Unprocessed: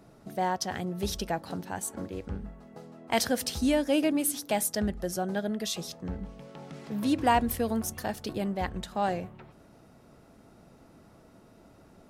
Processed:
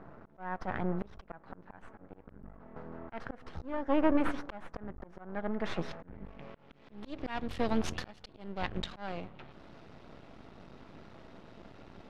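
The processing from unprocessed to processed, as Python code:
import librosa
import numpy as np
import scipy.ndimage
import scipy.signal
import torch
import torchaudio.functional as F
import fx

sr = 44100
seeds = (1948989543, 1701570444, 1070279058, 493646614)

y = np.maximum(x, 0.0)
y = fx.filter_sweep_lowpass(y, sr, from_hz=1500.0, to_hz=3600.0, start_s=5.36, end_s=7.06, q=1.4)
y = fx.auto_swell(y, sr, attack_ms=697.0)
y = F.gain(torch.from_numpy(y), 7.0).numpy()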